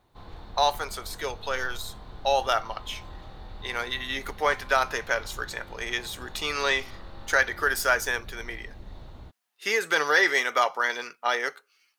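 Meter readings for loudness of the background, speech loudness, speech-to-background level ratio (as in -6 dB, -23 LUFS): -46.0 LUFS, -26.5 LUFS, 19.5 dB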